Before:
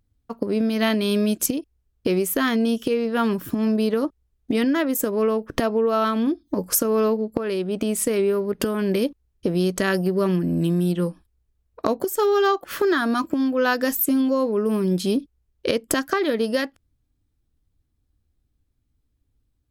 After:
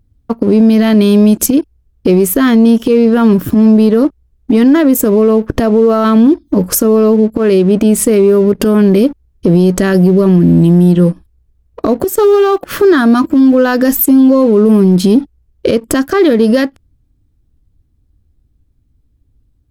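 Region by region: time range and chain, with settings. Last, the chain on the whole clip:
12.02–12.67 compressor 12:1, threshold -20 dBFS + short-mantissa float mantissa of 4-bit + Doppler distortion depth 0.14 ms
whole clip: low shelf 500 Hz +11 dB; sample leveller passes 1; maximiser +7.5 dB; gain -1 dB

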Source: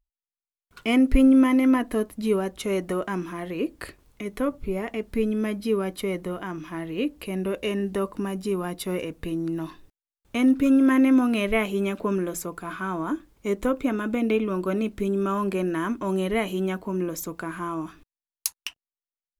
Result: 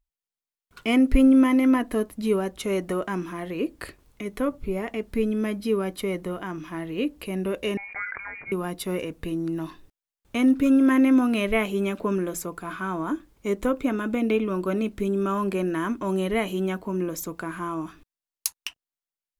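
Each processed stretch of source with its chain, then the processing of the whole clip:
7.77–8.52 HPF 660 Hz + inverted band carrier 2600 Hz + sustainer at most 42 dB/s
whole clip: dry

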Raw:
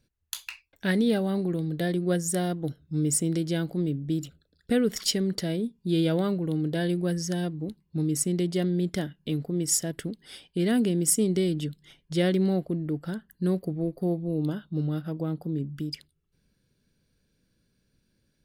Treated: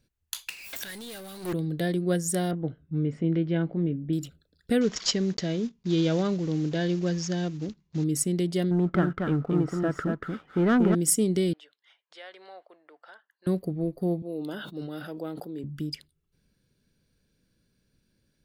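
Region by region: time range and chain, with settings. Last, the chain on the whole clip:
0.49–1.53 tilt +4.5 dB/oct + flipped gate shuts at -24 dBFS, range -41 dB + power-law curve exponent 0.35
2.51–4.13 LPF 2700 Hz 24 dB/oct + doubler 18 ms -11 dB
4.81–8.05 block floating point 5-bit + careless resampling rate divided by 3×, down none, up filtered
8.71–10.95 synth low-pass 1300 Hz, resonance Q 11 + sample leveller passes 1 + echo 0.235 s -4 dB
11.53–13.47 HPF 740 Hz 24 dB/oct + compressor 2:1, threshold -40 dBFS + tape spacing loss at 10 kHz 24 dB
14.22–15.64 HPF 380 Hz + bell 1100 Hz -4 dB 0.36 oct + sustainer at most 37 dB/s
whole clip: dry

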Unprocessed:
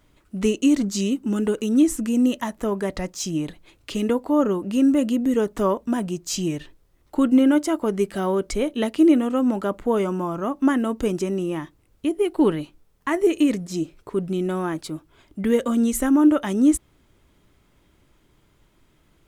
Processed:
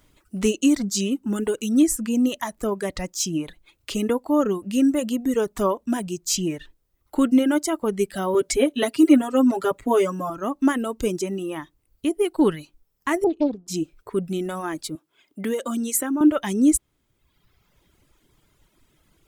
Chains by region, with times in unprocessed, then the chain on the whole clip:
8.34–10.3 HPF 49 Hz + comb 7.3 ms, depth 99%
13.24–13.68 air absorption 360 m + fixed phaser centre 570 Hz, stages 6 + Doppler distortion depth 0.52 ms
14.95–16.21 HPF 230 Hz + compressor 3:1, threshold -21 dBFS
whole clip: reverb removal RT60 1.2 s; high shelf 4400 Hz +7 dB

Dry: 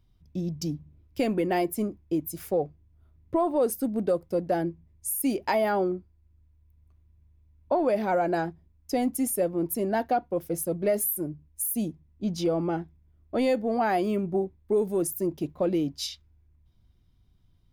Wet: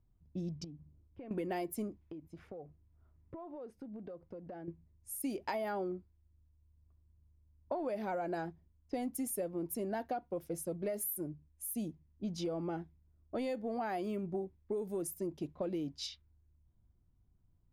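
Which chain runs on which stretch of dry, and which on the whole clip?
0.64–1.31 air absorption 240 m + compressor 5:1, threshold -39 dBFS
2.01–4.68 compressor 16:1, threshold -35 dBFS + mismatched tape noise reduction encoder only
whole clip: low-pass opened by the level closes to 1200 Hz, open at -25 dBFS; compressor, threshold -26 dBFS; gain -7.5 dB

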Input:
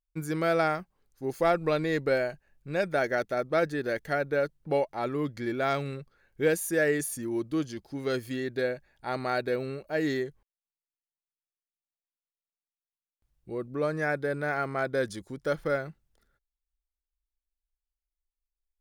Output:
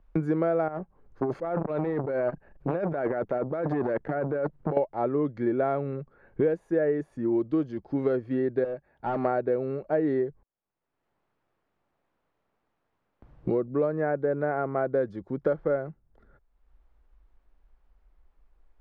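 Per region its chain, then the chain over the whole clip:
0.68–4.77 negative-ratio compressor -35 dBFS + core saturation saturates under 1100 Hz
8.64–9.25 HPF 190 Hz 6 dB/oct + overloaded stage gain 35 dB
whole clip: LPF 1100 Hz 12 dB/oct; dynamic EQ 500 Hz, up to +5 dB, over -36 dBFS, Q 0.7; three-band squash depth 100%

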